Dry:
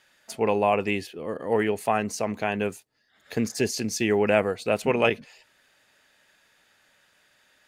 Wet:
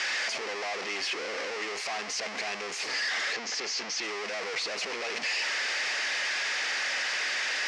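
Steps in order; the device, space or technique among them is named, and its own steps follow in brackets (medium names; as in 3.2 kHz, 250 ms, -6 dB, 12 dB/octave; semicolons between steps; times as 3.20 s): home computer beeper (one-bit comparator; cabinet simulation 610–5800 Hz, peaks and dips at 610 Hz -4 dB, 940 Hz -4 dB, 1.4 kHz -4 dB, 2.1 kHz +5 dB, 3.6 kHz -5 dB, 5.3 kHz +4 dB); 3.33–4.03 s: low-pass 7.1 kHz 24 dB/octave; trim -1.5 dB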